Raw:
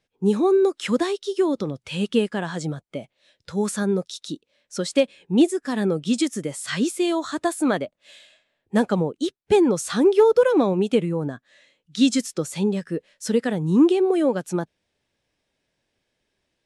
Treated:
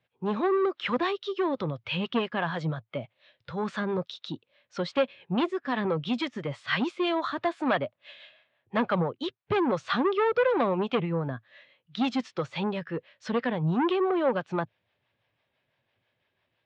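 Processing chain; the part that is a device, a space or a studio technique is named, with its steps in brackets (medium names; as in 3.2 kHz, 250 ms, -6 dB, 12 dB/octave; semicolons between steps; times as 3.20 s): guitar amplifier with harmonic tremolo (harmonic tremolo 6 Hz, depth 50%, crossover 480 Hz; saturation -19.5 dBFS, distortion -11 dB; cabinet simulation 110–3500 Hz, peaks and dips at 110 Hz +7 dB, 200 Hz -8 dB, 300 Hz -9 dB, 430 Hz -6 dB, 1.1 kHz +3 dB); trim +4 dB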